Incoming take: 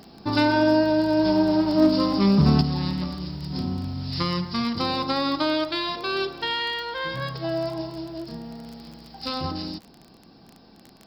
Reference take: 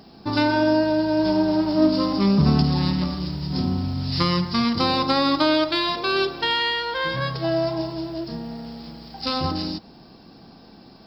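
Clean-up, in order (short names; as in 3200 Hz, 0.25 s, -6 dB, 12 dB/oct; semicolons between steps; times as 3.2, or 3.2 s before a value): clip repair -9.5 dBFS; de-click; gain 0 dB, from 2.61 s +4.5 dB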